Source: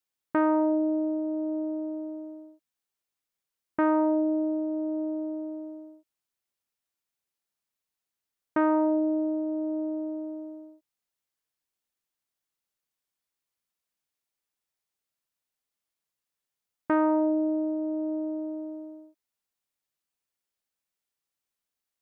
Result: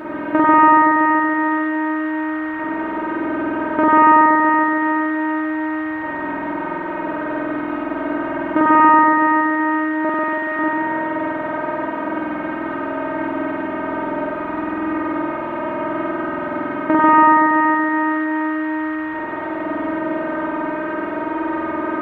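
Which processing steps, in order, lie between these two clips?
spectral levelling over time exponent 0.2; 10.04–10.59 s: comb 4.9 ms, depth 94%; spring tank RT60 3.6 s, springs 47 ms, chirp 55 ms, DRR -8.5 dB; trim +7 dB

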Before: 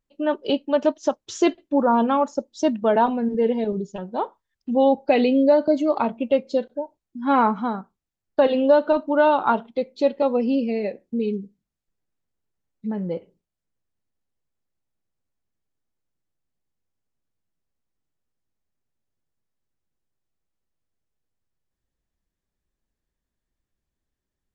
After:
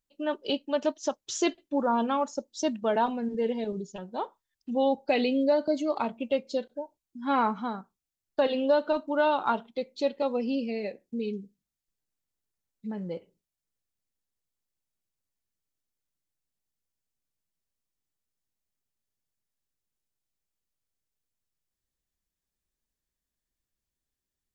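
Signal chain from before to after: treble shelf 2.8 kHz +11 dB; trim -8 dB

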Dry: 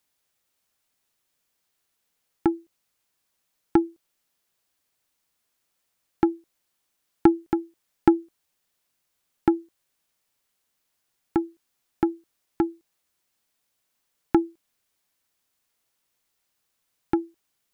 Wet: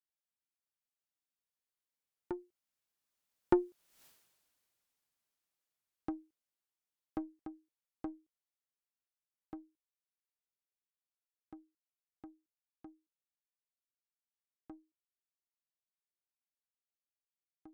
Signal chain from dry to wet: single-diode clipper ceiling -12 dBFS; Doppler pass-by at 4.05 s, 21 m/s, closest 1.2 m; trim +13.5 dB

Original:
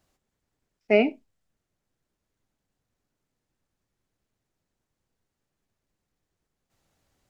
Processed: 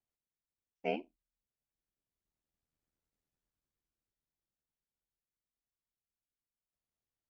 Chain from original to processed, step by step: Doppler pass-by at 3.05 s, 23 m/s, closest 17 m; ring modulator 40 Hz; upward expansion 1.5:1, over -42 dBFS; trim -2 dB

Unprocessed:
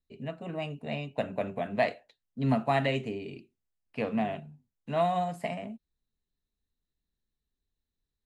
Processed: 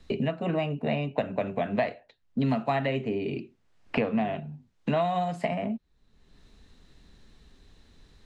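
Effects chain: distance through air 100 m; three bands compressed up and down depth 100%; trim +3 dB

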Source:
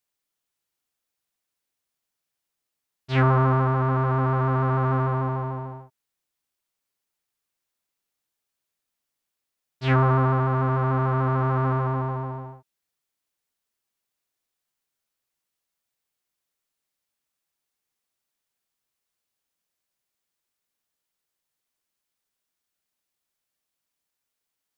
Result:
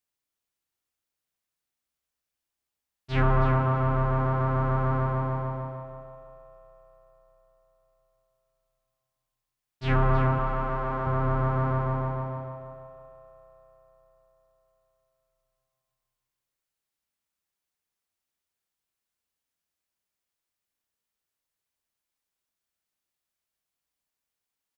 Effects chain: octave divider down 2 oct, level -3 dB; 10.38–11.07 s: high-pass 290 Hz 6 dB/octave; feedback delay 322 ms, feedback 20%, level -10 dB; reverberation RT60 4.5 s, pre-delay 32 ms, DRR 5.5 dB; trim -4.5 dB

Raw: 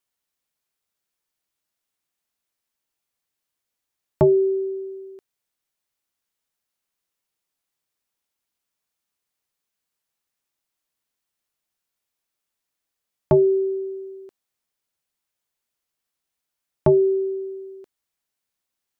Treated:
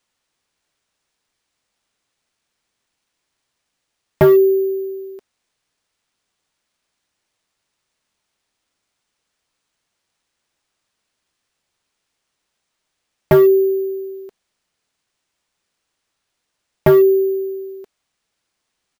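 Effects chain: comb 4.6 ms, depth 34%; careless resampling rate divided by 3×, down none, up hold; hard clipper -13.5 dBFS, distortion -15 dB; trim +6.5 dB

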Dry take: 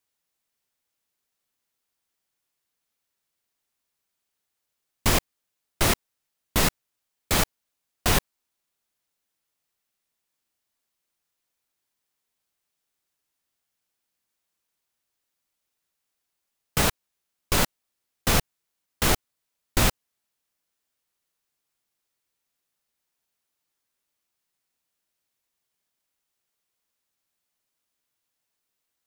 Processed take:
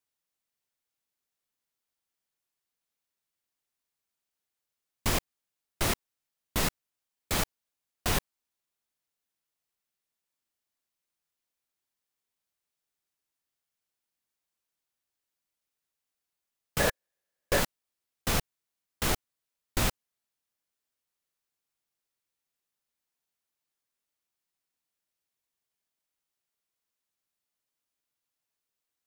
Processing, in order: 16.79–17.58 s: small resonant body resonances 540/1700 Hz, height 12 dB -> 15 dB, ringing for 20 ms; trim -6.5 dB

